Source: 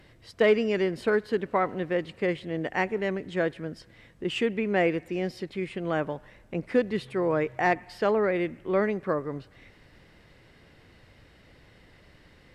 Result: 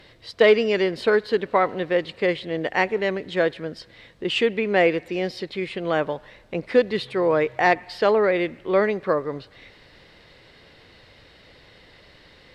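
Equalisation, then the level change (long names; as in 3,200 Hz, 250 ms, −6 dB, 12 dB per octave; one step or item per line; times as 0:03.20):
graphic EQ with 10 bands 500 Hz +6 dB, 1,000 Hz +4 dB, 2,000 Hz +3 dB, 4,000 Hz +12 dB
0.0 dB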